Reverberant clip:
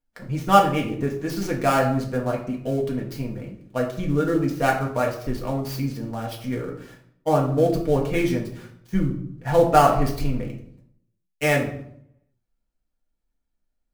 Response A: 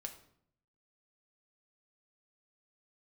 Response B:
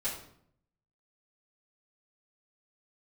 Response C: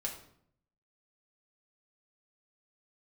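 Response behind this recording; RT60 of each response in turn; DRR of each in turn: C; 0.65 s, 0.65 s, 0.65 s; 3.5 dB, -10.5 dB, -1.5 dB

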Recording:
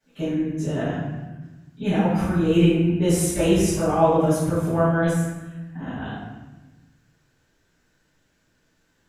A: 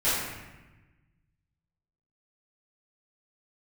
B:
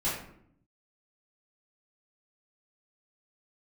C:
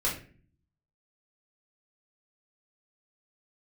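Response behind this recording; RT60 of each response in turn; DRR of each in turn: A; 1.1 s, 0.65 s, 0.45 s; -15.5 dB, -10.5 dB, -6.5 dB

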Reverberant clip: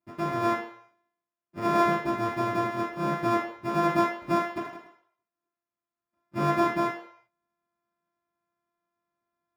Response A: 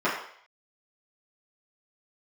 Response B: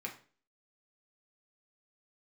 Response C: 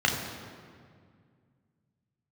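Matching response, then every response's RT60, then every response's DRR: A; 0.60 s, 0.40 s, 2.1 s; -11.0 dB, -1.0 dB, -0.5 dB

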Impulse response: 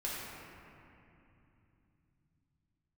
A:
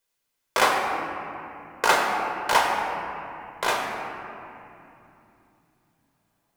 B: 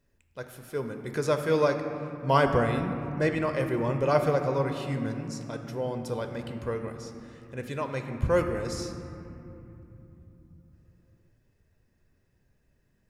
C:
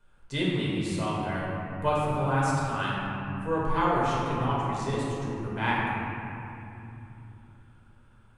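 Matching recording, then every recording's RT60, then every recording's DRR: C; 2.9 s, 2.9 s, 2.9 s; -0.5 dB, 5.5 dB, -7.0 dB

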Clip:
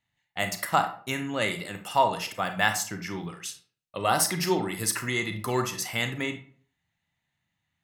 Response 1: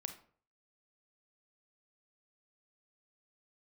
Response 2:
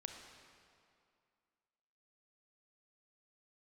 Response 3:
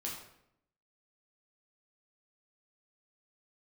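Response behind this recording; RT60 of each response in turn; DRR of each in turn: 1; 0.50 s, 2.3 s, 0.75 s; 7.0 dB, 3.5 dB, -3.5 dB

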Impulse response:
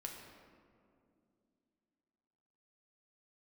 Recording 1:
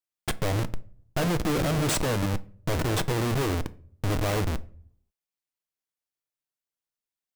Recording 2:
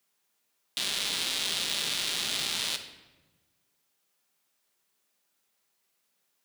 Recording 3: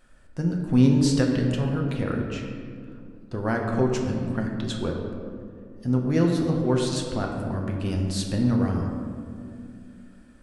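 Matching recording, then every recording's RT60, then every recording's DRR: 3; 0.50 s, 1.2 s, 2.5 s; 12.5 dB, 6.0 dB, 0.0 dB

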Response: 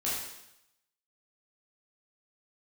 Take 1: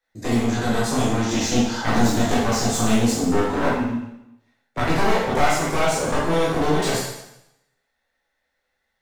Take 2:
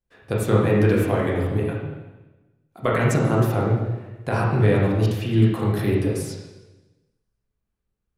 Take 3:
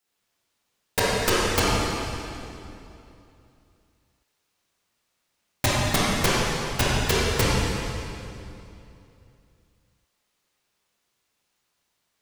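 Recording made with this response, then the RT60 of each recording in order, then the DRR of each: 1; 0.85 s, 1.1 s, 2.8 s; -8.5 dB, -5.0 dB, -9.0 dB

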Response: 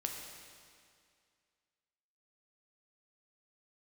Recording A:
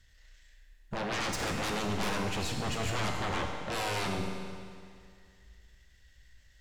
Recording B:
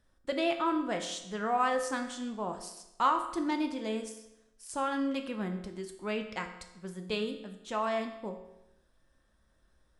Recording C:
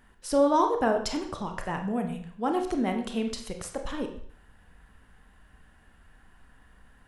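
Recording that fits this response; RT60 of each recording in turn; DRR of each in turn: A; 2.2 s, 0.90 s, 0.60 s; 1.0 dB, 4.0 dB, 4.0 dB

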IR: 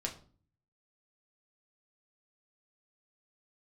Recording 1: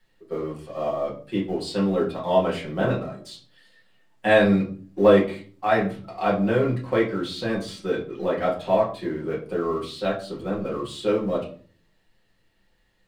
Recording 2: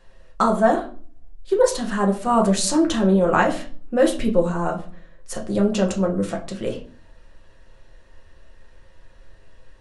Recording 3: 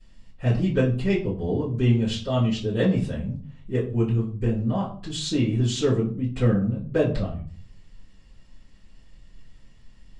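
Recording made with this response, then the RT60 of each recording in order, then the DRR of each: 2; 0.40 s, 0.45 s, 0.40 s; -5.5 dB, 0.0 dB, -15.5 dB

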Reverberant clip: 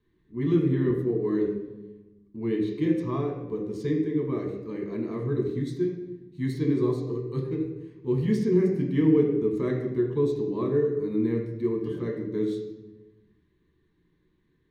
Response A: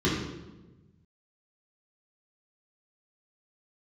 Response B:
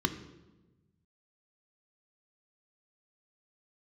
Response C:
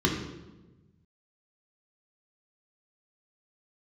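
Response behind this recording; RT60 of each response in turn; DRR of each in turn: C; 1.1 s, 1.1 s, 1.1 s; -7.5 dB, 7.5 dB, -1.0 dB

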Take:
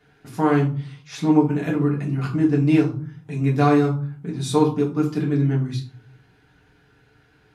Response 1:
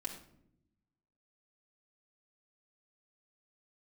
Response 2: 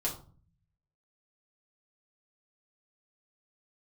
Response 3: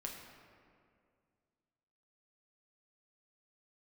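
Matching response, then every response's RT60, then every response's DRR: 2; 0.75 s, 0.40 s, 2.2 s; -2.5 dB, -4.5 dB, -0.5 dB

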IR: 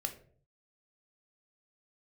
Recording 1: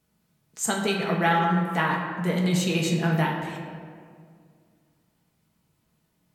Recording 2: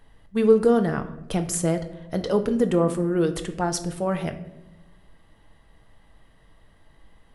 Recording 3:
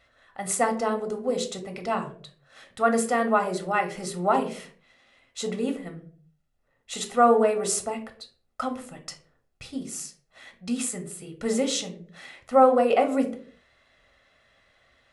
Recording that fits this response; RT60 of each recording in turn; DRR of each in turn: 3; 2.1 s, 1.0 s, 0.50 s; -2.0 dB, 6.5 dB, 5.0 dB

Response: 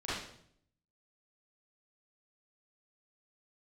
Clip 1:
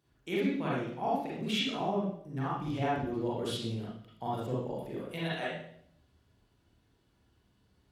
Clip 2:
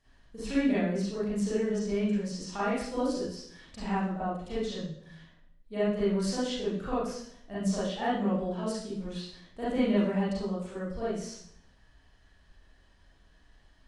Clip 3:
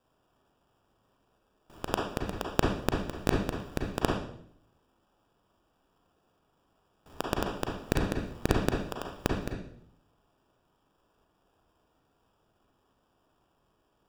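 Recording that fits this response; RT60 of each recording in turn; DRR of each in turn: 2; 0.65 s, 0.65 s, 0.65 s; -7.0 dB, -11.5 dB, -0.5 dB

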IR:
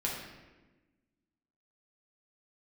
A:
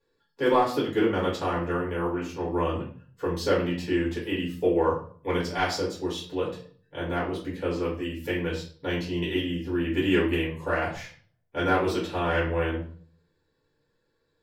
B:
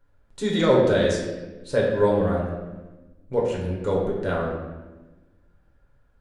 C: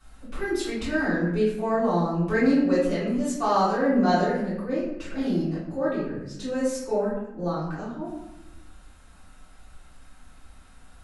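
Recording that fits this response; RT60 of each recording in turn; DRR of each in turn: B; 0.45 s, 1.2 s, 0.90 s; -7.0 dB, -4.0 dB, -13.5 dB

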